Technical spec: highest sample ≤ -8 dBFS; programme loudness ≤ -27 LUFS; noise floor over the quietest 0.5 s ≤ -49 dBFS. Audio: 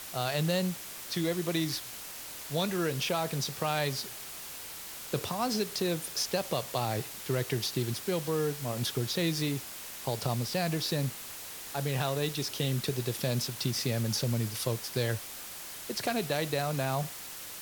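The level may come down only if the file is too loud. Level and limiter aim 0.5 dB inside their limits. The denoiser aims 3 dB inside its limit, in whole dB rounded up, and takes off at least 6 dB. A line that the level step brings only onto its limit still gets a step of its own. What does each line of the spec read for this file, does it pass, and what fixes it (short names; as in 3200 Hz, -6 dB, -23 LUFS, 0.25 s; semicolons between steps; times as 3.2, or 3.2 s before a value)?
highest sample -15.0 dBFS: OK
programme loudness -32.0 LUFS: OK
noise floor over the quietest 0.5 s -43 dBFS: fail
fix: denoiser 9 dB, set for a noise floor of -43 dBFS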